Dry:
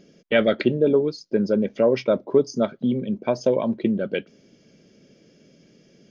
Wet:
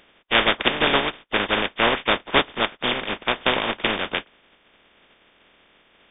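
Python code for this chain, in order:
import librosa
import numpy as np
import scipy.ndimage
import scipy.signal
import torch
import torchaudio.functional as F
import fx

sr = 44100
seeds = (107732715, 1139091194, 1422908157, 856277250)

y = fx.spec_flatten(x, sr, power=0.15)
y = fx.brickwall_lowpass(y, sr, high_hz=3700.0)
y = fx.peak_eq(y, sr, hz=120.0, db=-9.0, octaves=1.1)
y = y * librosa.db_to_amplitude(2.5)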